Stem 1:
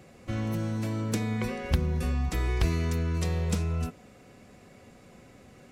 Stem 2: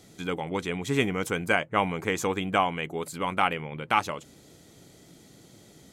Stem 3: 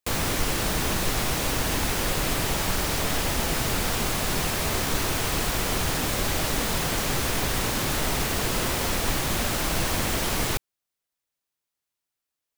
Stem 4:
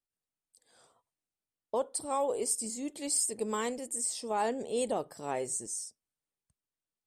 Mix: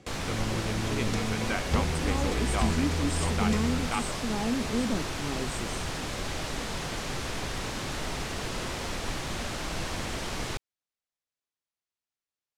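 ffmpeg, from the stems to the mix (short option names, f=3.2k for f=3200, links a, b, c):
-filter_complex "[0:a]volume=-3dB[a];[1:a]volume=-9dB[b];[2:a]volume=-7dB[c];[3:a]lowshelf=f=360:t=q:w=1.5:g=13.5,volume=-4.5dB[d];[a][b][c][d]amix=inputs=4:normalize=0,lowpass=7.4k"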